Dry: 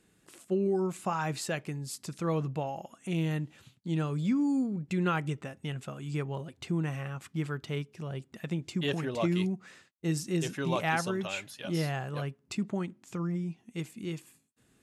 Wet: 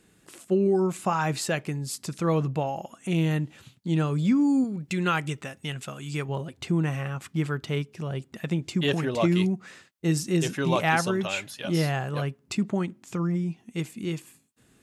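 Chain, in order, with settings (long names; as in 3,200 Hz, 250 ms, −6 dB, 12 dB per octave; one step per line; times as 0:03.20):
0:04.64–0:06.29: tilt shelving filter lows −4.5 dB, about 1,500 Hz
level +6 dB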